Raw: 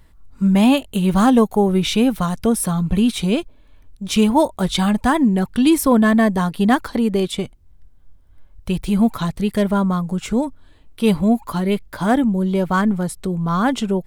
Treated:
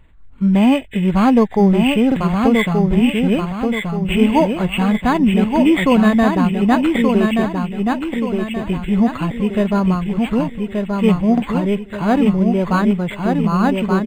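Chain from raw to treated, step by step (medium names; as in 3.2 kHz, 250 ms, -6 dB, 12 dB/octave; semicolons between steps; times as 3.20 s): knee-point frequency compression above 2.4 kHz 4:1; on a send: feedback delay 1178 ms, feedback 42%, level -4 dB; on the sum: buffer glitch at 2.07/11.33 s, samples 2048, times 1; decimation joined by straight lines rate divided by 8×; trim +1 dB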